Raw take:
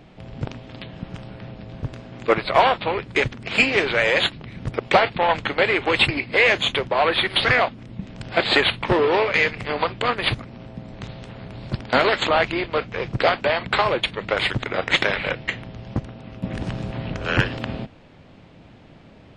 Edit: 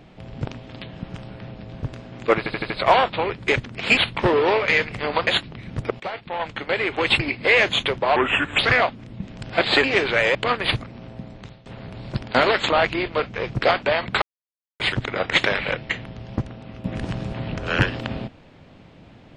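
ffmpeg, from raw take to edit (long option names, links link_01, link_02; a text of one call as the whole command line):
ffmpeg -i in.wav -filter_complex "[0:a]asplit=15[link_01][link_02][link_03][link_04][link_05][link_06][link_07][link_08][link_09][link_10][link_11][link_12][link_13][link_14][link_15];[link_01]atrim=end=2.462[link_16];[link_02]atrim=start=2.378:end=2.462[link_17];[link_03]atrim=start=2.378:end=2.462[link_18];[link_04]atrim=start=2.378:end=2.462[link_19];[link_05]atrim=start=2.378:end=3.652[link_20];[link_06]atrim=start=8.628:end=9.932[link_21];[link_07]atrim=start=4.158:end=4.89,asetpts=PTS-STARTPTS,afade=type=out:start_time=0.728:duration=0.004:curve=hsin:silence=0.133352[link_22];[link_08]atrim=start=4.89:end=7.054,asetpts=PTS-STARTPTS,afade=type=in:duration=1.31:silence=0.133352[link_23];[link_09]atrim=start=7.05:end=7.38,asetpts=PTS-STARTPTS,asetrate=33957,aresample=44100[link_24];[link_10]atrim=start=7.376:end=8.632[link_25];[link_11]atrim=start=3.648:end=4.162[link_26];[link_12]atrim=start=9.928:end=11.24,asetpts=PTS-STARTPTS,afade=type=out:start_time=0.872:duration=0.44:silence=0.125893[link_27];[link_13]atrim=start=11.24:end=13.8,asetpts=PTS-STARTPTS,afade=type=in:duration=0.004:curve=hsin:silence=0.125893,afade=type=out:start_time=2.556:duration=0.004:curve=hsin[link_28];[link_14]atrim=start=13.8:end=14.38,asetpts=PTS-STARTPTS,volume=0[link_29];[link_15]atrim=start=14.38,asetpts=PTS-STARTPTS,afade=type=in:duration=0.004:curve=hsin[link_30];[link_16][link_17]acrossfade=duration=0.004:curve1=hsin:curve2=hsin[link_31];[link_31][link_18]acrossfade=duration=0.004:curve1=hsin:curve2=hsin[link_32];[link_32][link_19]acrossfade=duration=0.004:curve1=hsin:curve2=hsin[link_33];[link_33][link_20]acrossfade=duration=0.004:curve1=hsin:curve2=hsin[link_34];[link_34][link_21]acrossfade=duration=0.004:curve1=hsin:curve2=hsin[link_35];[link_22][link_23]concat=n=2:v=0:a=1[link_36];[link_35][link_36]acrossfade=duration=0.004:curve1=hsin:curve2=hsin[link_37];[link_37][link_24]acrossfade=duration=0.004:curve1=hsin:curve2=hsin[link_38];[link_38][link_25]acrossfade=duration=0.004:curve1=hsin:curve2=hsin[link_39];[link_39][link_26]acrossfade=duration=0.004:curve1=hsin:curve2=hsin[link_40];[link_27][link_28][link_29][link_30]concat=n=4:v=0:a=1[link_41];[link_40][link_41]acrossfade=duration=0.004:curve1=hsin:curve2=hsin" out.wav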